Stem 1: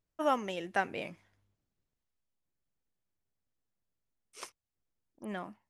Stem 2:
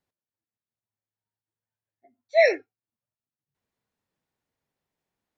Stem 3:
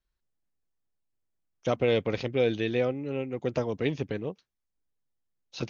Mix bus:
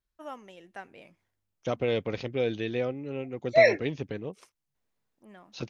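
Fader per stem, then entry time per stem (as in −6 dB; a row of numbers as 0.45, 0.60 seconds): −12.0, −1.0, −3.0 decibels; 0.00, 1.20, 0.00 seconds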